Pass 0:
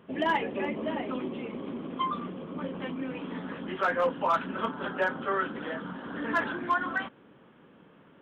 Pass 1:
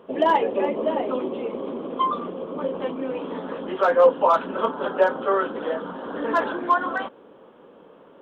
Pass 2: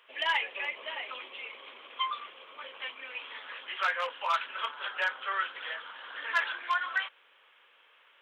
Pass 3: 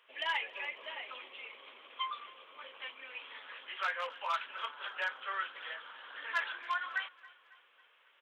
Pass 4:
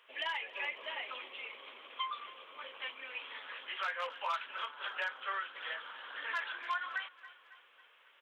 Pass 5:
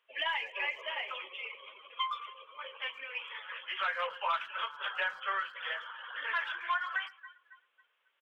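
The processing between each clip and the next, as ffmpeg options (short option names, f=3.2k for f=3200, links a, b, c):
-af "equalizer=f=125:t=o:w=1:g=-9,equalizer=f=500:t=o:w=1:g=10,equalizer=f=1k:t=o:w=1:g=5,equalizer=f=2k:t=o:w=1:g=-6,equalizer=f=4k:t=o:w=1:g=3,volume=2.5dB"
-af "highpass=f=2.2k:t=q:w=2.6"
-af "aecho=1:1:274|548|822|1096:0.0841|0.0429|0.0219|0.0112,volume=-5.5dB"
-af "alimiter=level_in=5.5dB:limit=-24dB:level=0:latency=1:release=273,volume=-5.5dB,volume=2.5dB"
-filter_complex "[0:a]afftdn=nr=17:nf=-49,aeval=exprs='0.0473*(cos(1*acos(clip(val(0)/0.0473,-1,1)))-cos(1*PI/2))+0.000422*(cos(4*acos(clip(val(0)/0.0473,-1,1)))-cos(4*PI/2))':c=same,asplit=2[a][b];[b]adelay=110,highpass=300,lowpass=3.4k,asoftclip=type=hard:threshold=-36dB,volume=-20dB[c];[a][c]amix=inputs=2:normalize=0,volume=4dB"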